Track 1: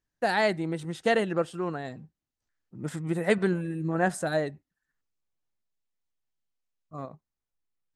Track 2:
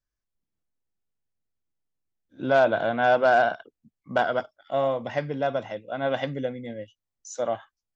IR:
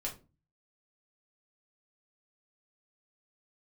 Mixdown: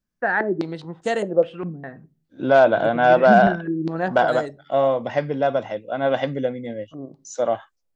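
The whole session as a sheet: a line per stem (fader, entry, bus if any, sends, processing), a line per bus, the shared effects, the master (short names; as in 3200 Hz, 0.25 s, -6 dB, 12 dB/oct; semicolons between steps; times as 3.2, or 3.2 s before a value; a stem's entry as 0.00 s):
-4.0 dB, 0.00 s, send -13.5 dB, stepped low-pass 4.9 Hz 210–7400 Hz
+2.0 dB, 0.00 s, no send, dry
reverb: on, RT60 0.30 s, pre-delay 4 ms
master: bell 470 Hz +4 dB 2.8 oct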